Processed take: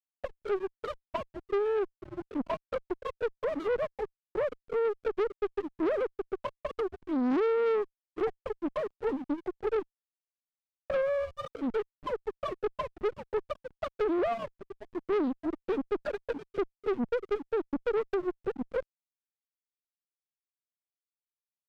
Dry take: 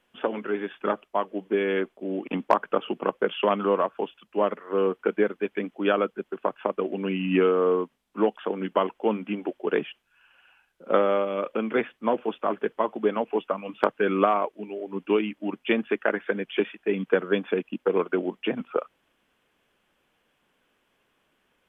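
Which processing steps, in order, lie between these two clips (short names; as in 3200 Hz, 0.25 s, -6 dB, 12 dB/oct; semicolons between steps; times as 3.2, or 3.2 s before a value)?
sine-wave speech; LPF 1100 Hz 12 dB/oct; in parallel at -6.5 dB: sine folder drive 4 dB, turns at -9.5 dBFS; on the sum: dynamic EQ 520 Hz, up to -4 dB, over -28 dBFS, Q 1.1; on a send: reverse echo 47 ms -20.5 dB; on the sum: compressor 2:1, threshold -22 dBFS, peak gain reduction 5.5 dB; envelope flanger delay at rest 4.1 ms, full sweep at -19 dBFS; backlash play -29 dBFS; tube stage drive 27 dB, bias 0.35; Doppler distortion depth 0.45 ms; gain +2.5 dB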